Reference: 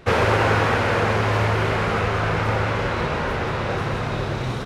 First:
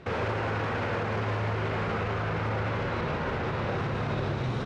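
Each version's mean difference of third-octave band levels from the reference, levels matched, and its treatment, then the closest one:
3.5 dB: high-pass filter 150 Hz 6 dB per octave
low-shelf EQ 210 Hz +8.5 dB
brickwall limiter −18.5 dBFS, peak gain reduction 12.5 dB
high-frequency loss of the air 81 metres
level −3 dB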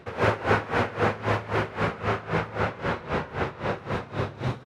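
6.5 dB: high-pass filter 78 Hz
high-shelf EQ 3,400 Hz −7.5 dB
single-tap delay 116 ms −9 dB
tremolo with a sine in dB 3.8 Hz, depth 19 dB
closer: first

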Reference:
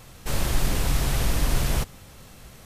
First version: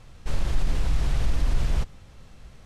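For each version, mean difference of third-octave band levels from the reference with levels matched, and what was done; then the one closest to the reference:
3.5 dB: high-frequency loss of the air 66 metres
brickwall limiter −15.5 dBFS, peak gain reduction 5 dB
low-shelf EQ 71 Hz +11 dB
level −5.5 dB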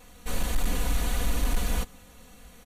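2.5 dB: notch filter 5,100 Hz, Q 6.5
comb filter 4.1 ms, depth 91%
hard clipping −11 dBFS, distortion −22 dB
level −6.5 dB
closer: second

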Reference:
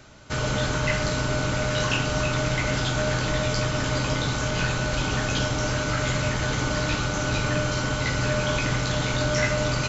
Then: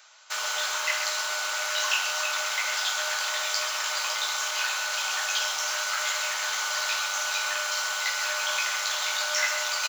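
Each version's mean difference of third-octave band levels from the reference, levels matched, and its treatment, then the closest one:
18.0 dB: in parallel at −11.5 dB: bit reduction 5 bits
on the sum: high-pass filter 910 Hz 24 dB per octave
parametric band 1,500 Hz −6 dB 2.4 octaves
single-tap delay 131 ms −10 dB
level +3 dB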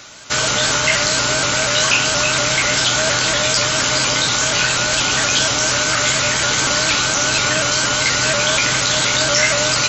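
5.0 dB: spectral tilt +3.5 dB per octave
in parallel at +1 dB: brickwall limiter −17 dBFS, peak gain reduction 10 dB
on the sum: pitch modulation by a square or saw wave saw up 4.2 Hz, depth 100 cents
level +2.5 dB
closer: second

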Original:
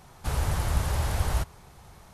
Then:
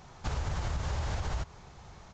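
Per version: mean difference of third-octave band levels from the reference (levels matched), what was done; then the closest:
5.5 dB: brickwall limiter −19.5 dBFS, peak gain reduction 5.5 dB
downsampling to 16,000 Hz
downward compressor, threshold −29 dBFS, peak gain reduction 6 dB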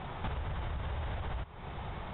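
12.5 dB: Chebyshev low-pass filter 3,700 Hz, order 8
brickwall limiter −25.5 dBFS, peak gain reduction 10.5 dB
downward compressor 8 to 1, threshold −46 dBFS, peak gain reduction 16.5 dB
level +11.5 dB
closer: first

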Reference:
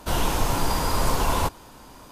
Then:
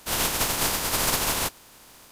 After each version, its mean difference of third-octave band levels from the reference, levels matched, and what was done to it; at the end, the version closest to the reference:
5.5 dB: compressing power law on the bin magnitudes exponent 0.36
level −4.5 dB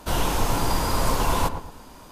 1.0 dB: feedback echo with a low-pass in the loop 114 ms, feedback 38%, low-pass 1,100 Hz, level −7.5 dB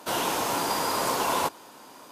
3.0 dB: high-pass filter 280 Hz 12 dB per octave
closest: second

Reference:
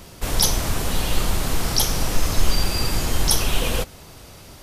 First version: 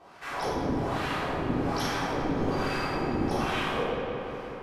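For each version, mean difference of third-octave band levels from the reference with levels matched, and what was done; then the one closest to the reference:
10.5 dB: LFO wah 1.2 Hz 260–1,700 Hz, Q 2.1
feedback echo with a low-pass in the loop 180 ms, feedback 79%, low-pass 4,500 Hz, level −8 dB
rectangular room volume 820 cubic metres, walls mixed, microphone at 3.6 metres
level −3.5 dB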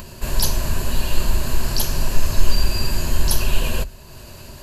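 2.5 dB: low-shelf EQ 110 Hz +5.5 dB
upward compression, threshold −28 dBFS
EQ curve with evenly spaced ripples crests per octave 1.4, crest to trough 9 dB
level −3.5 dB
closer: second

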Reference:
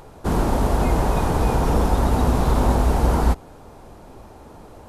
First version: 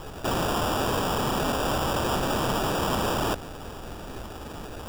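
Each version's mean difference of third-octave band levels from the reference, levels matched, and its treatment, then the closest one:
8.0 dB: in parallel at −3 dB: brickwall limiter −12 dBFS, peak gain reduction 5.5 dB
on the sum: decimation without filtering 21×
wrap-around overflow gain 21 dB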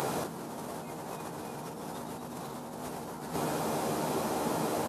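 12.5 dB: high-pass filter 140 Hz 24 dB per octave
high-shelf EQ 4,300 Hz +7.5 dB
double-tracking delay 13 ms −7 dB
compressor whose output falls as the input rises −37 dBFS, ratio −1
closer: first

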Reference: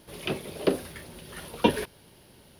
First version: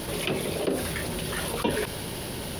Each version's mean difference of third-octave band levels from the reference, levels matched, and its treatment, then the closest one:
11.5 dB: envelope flattener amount 70%
level −6.5 dB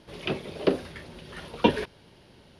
3.0 dB: low-pass filter 5,400 Hz 12 dB per octave
level +1 dB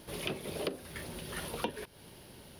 9.0 dB: downward compressor 10 to 1, threshold −35 dBFS, peak gain reduction 20.5 dB
level +2 dB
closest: second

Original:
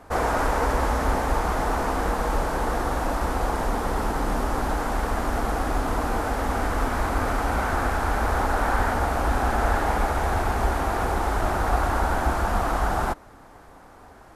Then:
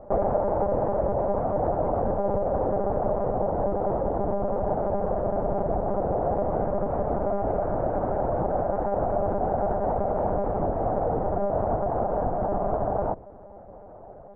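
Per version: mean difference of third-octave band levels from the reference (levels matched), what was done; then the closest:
14.5 dB: mains-hum notches 60/120/180/240/300 Hz
downward compressor, threshold −24 dBFS, peak gain reduction 7.5 dB
low-pass with resonance 600 Hz, resonance Q 3.5
one-pitch LPC vocoder at 8 kHz 200 Hz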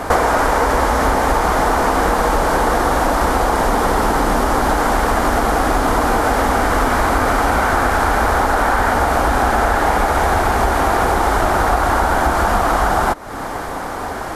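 2.5 dB: low-shelf EQ 190 Hz −6.5 dB
notch filter 2,600 Hz, Q 23
downward compressor, threshold −38 dBFS, peak gain reduction 17 dB
boost into a limiter +25.5 dB
level −1 dB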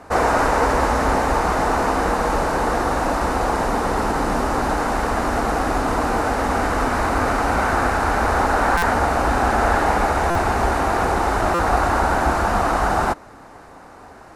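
1.0 dB: low-pass filter 10,000 Hz 12 dB per octave
low-shelf EQ 64 Hz −10.5 dB
notch filter 3,300 Hz, Q 13
buffer that repeats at 0:08.77/0:10.30/0:11.54, samples 256, times 8
level +6.5 dB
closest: third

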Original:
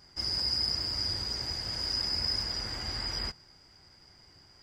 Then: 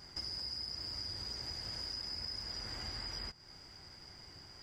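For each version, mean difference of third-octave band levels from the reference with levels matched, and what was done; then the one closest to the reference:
4.5 dB: downward compressor 6 to 1, threshold −44 dBFS, peak gain reduction 17 dB
level +3.5 dB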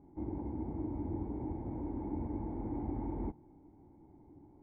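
13.5 dB: formant resonators in series u
level +15 dB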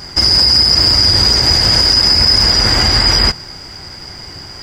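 2.0 dB: boost into a limiter +27.5 dB
level −1 dB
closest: third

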